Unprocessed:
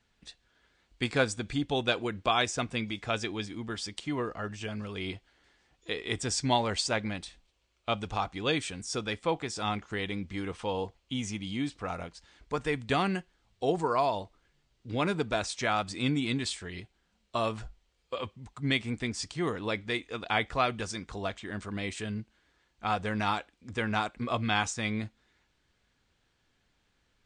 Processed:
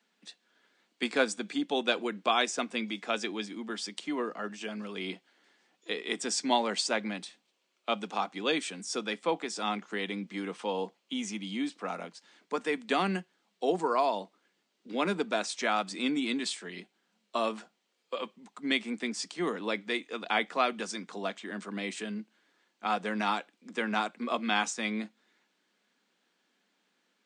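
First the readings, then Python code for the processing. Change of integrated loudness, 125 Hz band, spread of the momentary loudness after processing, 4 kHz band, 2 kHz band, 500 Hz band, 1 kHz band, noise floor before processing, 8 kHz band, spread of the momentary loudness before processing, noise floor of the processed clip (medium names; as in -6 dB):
-0.5 dB, -11.5 dB, 11 LU, 0.0 dB, 0.0 dB, 0.0 dB, 0.0 dB, -73 dBFS, 0.0 dB, 10 LU, -77 dBFS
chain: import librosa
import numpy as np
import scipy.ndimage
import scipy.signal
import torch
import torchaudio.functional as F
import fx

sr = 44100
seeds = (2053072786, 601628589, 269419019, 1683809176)

y = scipy.signal.sosfilt(scipy.signal.butter(12, 180.0, 'highpass', fs=sr, output='sos'), x)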